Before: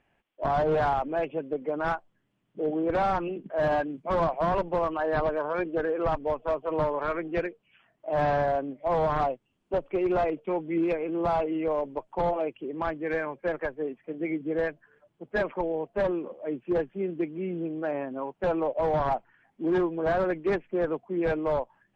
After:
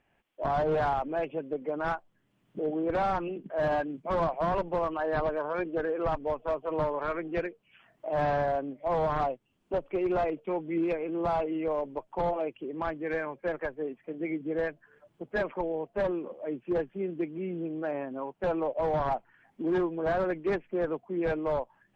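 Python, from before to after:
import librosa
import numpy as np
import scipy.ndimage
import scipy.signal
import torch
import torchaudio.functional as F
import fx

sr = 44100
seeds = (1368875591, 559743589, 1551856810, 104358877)

y = fx.recorder_agc(x, sr, target_db=-27.5, rise_db_per_s=16.0, max_gain_db=30)
y = y * librosa.db_to_amplitude(-2.5)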